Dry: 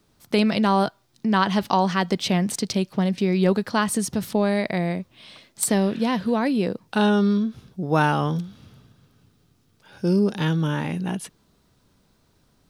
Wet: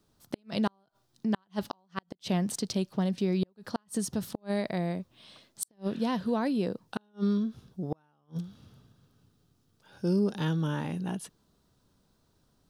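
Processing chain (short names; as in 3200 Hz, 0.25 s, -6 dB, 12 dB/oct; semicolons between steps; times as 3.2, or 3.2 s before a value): bell 2200 Hz -6.5 dB 0.56 oct; flipped gate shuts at -11 dBFS, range -41 dB; gain -6.5 dB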